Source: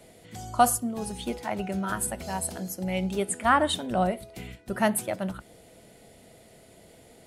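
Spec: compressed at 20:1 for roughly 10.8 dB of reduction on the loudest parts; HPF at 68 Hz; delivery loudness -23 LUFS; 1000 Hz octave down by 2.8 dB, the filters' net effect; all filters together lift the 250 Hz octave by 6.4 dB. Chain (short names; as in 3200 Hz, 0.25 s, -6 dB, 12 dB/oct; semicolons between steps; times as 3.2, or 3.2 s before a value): HPF 68 Hz; bell 250 Hz +8.5 dB; bell 1000 Hz -5 dB; compressor 20:1, threshold -26 dBFS; gain +9 dB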